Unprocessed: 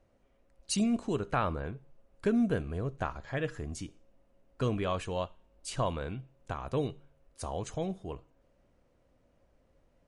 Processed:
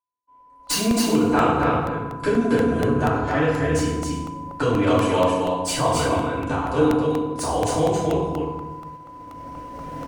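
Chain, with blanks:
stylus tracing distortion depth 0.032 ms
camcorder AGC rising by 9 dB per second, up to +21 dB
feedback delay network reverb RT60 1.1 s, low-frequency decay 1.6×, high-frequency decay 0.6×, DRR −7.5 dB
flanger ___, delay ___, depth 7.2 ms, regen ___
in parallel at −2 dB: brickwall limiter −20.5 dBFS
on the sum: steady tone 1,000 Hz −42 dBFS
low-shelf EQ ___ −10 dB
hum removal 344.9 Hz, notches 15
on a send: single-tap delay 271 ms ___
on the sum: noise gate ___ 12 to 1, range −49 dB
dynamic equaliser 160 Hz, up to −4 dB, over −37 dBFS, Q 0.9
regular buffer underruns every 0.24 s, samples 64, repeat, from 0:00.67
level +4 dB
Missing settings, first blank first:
0.84 Hz, 0.7 ms, −67%, 88 Hz, −3.5 dB, −38 dBFS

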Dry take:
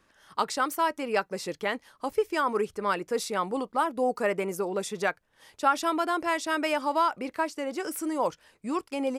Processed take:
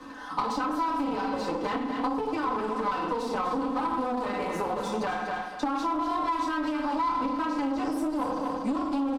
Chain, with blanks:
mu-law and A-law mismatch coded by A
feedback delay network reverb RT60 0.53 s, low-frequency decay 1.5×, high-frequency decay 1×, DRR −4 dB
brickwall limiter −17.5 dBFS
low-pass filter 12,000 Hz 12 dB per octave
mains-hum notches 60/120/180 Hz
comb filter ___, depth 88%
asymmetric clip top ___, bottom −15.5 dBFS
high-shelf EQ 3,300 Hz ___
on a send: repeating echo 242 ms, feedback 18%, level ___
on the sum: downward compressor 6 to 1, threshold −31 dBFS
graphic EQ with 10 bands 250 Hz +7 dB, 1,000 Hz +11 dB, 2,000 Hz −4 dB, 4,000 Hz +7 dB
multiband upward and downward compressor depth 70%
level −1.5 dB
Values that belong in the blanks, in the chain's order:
3.9 ms, −33.5 dBFS, −9 dB, −10.5 dB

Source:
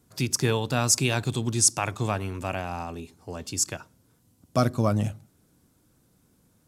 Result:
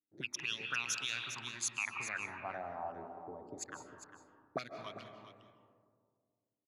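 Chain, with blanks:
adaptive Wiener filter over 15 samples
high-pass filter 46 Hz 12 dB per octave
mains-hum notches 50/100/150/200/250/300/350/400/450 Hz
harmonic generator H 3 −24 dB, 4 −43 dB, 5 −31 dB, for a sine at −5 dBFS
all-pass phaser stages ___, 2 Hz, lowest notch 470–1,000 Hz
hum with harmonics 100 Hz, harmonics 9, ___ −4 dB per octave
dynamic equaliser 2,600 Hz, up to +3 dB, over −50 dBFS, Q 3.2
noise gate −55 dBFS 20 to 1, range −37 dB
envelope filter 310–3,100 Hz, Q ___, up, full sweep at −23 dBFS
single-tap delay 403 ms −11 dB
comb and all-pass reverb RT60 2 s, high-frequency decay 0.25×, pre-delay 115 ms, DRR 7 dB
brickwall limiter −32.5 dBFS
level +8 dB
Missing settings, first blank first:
12, −63 dBFS, 5.4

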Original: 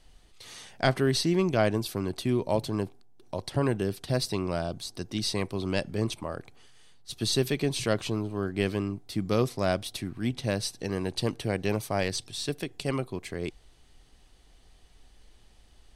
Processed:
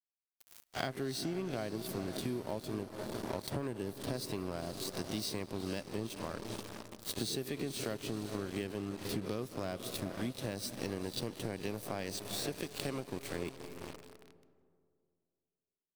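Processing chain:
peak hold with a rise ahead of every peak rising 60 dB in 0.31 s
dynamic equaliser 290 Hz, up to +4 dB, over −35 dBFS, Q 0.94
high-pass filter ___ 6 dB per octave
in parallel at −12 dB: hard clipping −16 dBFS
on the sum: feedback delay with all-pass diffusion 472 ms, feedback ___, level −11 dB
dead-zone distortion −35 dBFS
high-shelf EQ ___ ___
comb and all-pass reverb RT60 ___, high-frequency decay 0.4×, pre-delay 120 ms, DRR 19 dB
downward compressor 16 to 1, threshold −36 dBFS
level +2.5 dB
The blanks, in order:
52 Hz, 55%, 12,000 Hz, +11.5 dB, 2.2 s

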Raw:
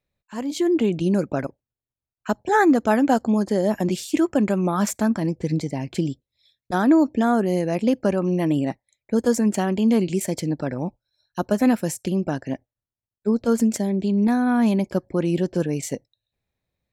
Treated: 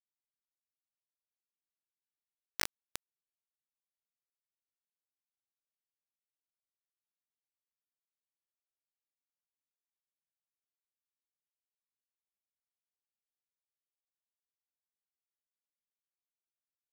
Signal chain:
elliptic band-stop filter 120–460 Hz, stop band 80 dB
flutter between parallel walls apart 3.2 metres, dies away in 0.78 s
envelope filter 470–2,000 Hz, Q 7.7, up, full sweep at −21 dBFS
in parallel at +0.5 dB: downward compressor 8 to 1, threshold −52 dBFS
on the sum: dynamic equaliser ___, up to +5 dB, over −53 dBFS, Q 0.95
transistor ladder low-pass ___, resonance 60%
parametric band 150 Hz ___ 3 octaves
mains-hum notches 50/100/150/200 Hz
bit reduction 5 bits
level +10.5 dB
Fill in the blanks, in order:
440 Hz, 5,800 Hz, −9 dB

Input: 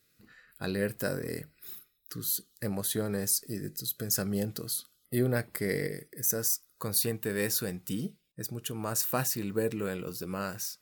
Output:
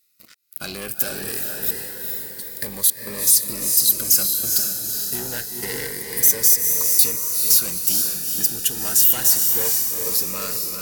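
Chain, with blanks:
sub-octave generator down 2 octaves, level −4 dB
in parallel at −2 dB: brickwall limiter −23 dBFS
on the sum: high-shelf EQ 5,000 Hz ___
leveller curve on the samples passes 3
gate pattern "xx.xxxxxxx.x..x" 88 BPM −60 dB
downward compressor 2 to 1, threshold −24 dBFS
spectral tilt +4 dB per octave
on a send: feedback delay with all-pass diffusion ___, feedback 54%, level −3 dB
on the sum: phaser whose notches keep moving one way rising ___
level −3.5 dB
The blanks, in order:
−4.5 dB, 450 ms, 0.28 Hz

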